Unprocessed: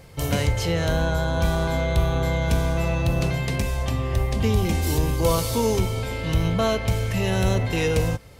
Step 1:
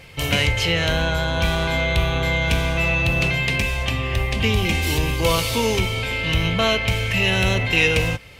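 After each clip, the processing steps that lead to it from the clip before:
parametric band 2,600 Hz +14.5 dB 1.2 octaves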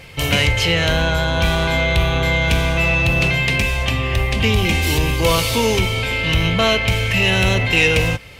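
soft clipping −9 dBFS, distortion −24 dB
level +4 dB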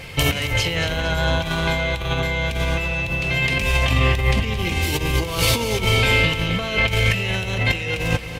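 compressor whose output falls as the input rises −20 dBFS, ratio −0.5
repeating echo 227 ms, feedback 53%, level −12 dB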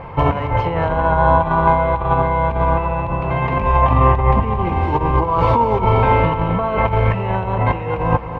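low-pass with resonance 980 Hz, resonance Q 5.2
level +3.5 dB

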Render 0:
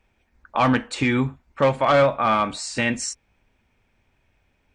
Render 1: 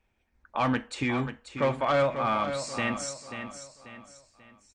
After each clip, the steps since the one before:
repeating echo 538 ms, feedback 38%, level −9 dB
level −7.5 dB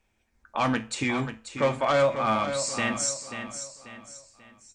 parametric band 7,300 Hz +8 dB 1.2 octaves
mains-hum notches 60/120 Hz
tuned comb filter 110 Hz, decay 0.3 s, harmonics all, mix 60%
level +7 dB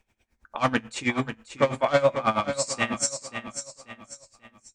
tremolo with a sine in dB 9.2 Hz, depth 18 dB
level +5.5 dB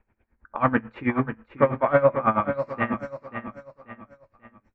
low-pass filter 1,800 Hz 24 dB per octave
parametric band 710 Hz −4 dB 0.45 octaves
level +3.5 dB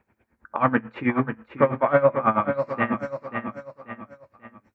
high-pass filter 99 Hz 12 dB per octave
in parallel at +1 dB: downward compressor, threshold −29 dBFS, peak gain reduction 15.5 dB
on the sum: level −1.5 dB

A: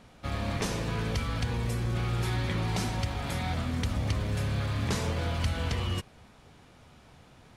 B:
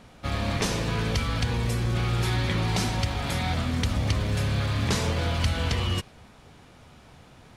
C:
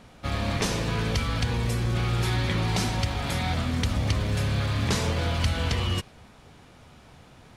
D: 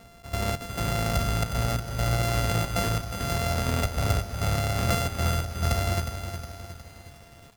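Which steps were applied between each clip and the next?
dynamic equaliser 4,100 Hz, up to +3 dB, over −48 dBFS, Q 0.74; level +4 dB
no processing that can be heard
samples sorted by size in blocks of 64 samples; gate pattern "xx.xx..xxxx" 136 BPM −12 dB; feedback echo at a low word length 362 ms, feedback 55%, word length 8 bits, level −8 dB

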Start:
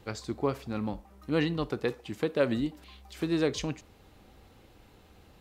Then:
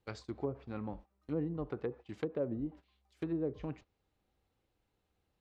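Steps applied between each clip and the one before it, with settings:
treble cut that deepens with the level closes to 530 Hz, closed at −24.5 dBFS
noise gate −43 dBFS, range −17 dB
parametric band 230 Hz −3 dB 0.41 octaves
level −6.5 dB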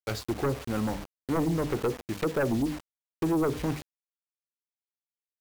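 mains-hum notches 50/100/150/200/250/300 Hz
bit reduction 9 bits
sine wavefolder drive 10 dB, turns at −22 dBFS

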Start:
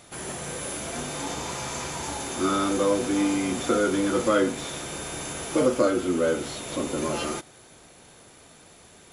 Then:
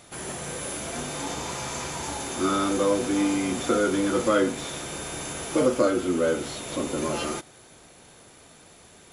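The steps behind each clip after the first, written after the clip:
no processing that can be heard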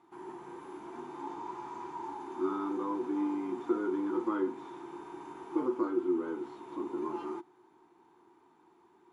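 pair of resonant band-passes 570 Hz, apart 1.4 octaves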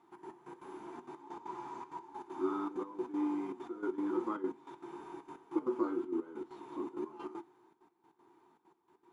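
gate pattern "xx.x..x.xxx" 196 BPM −12 dB
flanger 1.4 Hz, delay 4.3 ms, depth 3.5 ms, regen −64%
level +2 dB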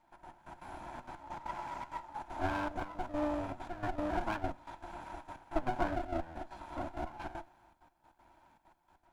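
lower of the sound and its delayed copy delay 1.2 ms
automatic gain control gain up to 6 dB
level −2 dB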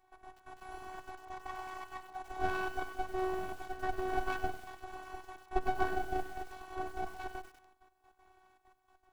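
phases set to zero 373 Hz
feedback echo at a low word length 97 ms, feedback 55%, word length 8 bits, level −12 dB
level +2.5 dB

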